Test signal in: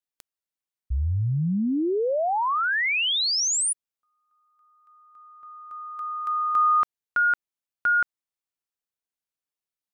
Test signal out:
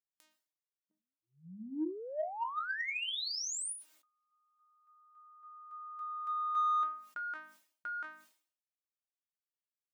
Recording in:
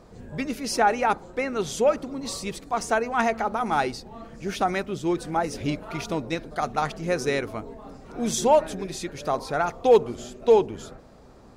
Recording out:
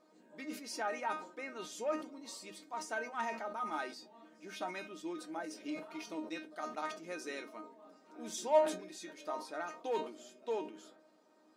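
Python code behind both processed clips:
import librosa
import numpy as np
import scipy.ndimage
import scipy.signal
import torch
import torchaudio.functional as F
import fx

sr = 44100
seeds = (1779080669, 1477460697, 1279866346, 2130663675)

p1 = fx.low_shelf(x, sr, hz=330.0, db=-4.0)
p2 = fx.hum_notches(p1, sr, base_hz=50, count=5)
p3 = fx.comb_fb(p2, sr, f0_hz=310.0, decay_s=0.22, harmonics='all', damping=0.1, mix_pct=90)
p4 = 10.0 ** (-28.5 / 20.0) * np.tanh(p3 / 10.0 ** (-28.5 / 20.0))
p5 = p3 + (p4 * 10.0 ** (-5.0 / 20.0))
p6 = fx.brickwall_highpass(p5, sr, low_hz=170.0)
p7 = fx.sustainer(p6, sr, db_per_s=110.0)
y = p7 * 10.0 ** (-5.5 / 20.0)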